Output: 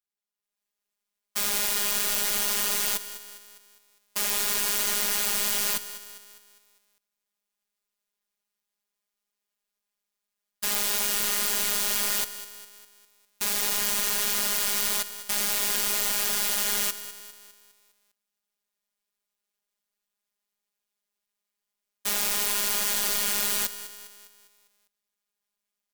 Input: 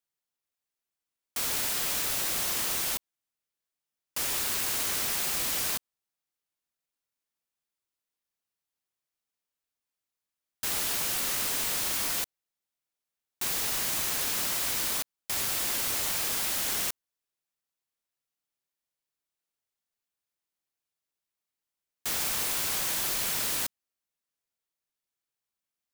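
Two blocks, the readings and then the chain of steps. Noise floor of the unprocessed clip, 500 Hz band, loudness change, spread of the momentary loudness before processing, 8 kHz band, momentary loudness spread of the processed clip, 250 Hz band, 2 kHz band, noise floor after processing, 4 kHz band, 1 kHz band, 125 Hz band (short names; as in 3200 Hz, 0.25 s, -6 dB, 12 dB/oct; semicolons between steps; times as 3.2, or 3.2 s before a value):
under -85 dBFS, +4.0 dB, +3.5 dB, 5 LU, +3.5 dB, 13 LU, +2.5 dB, +3.5 dB, under -85 dBFS, +3.5 dB, +3.0 dB, n/a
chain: AGC gain up to 9.5 dB; robotiser 205 Hz; lo-fi delay 0.202 s, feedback 55%, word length 6-bit, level -13 dB; gain -4 dB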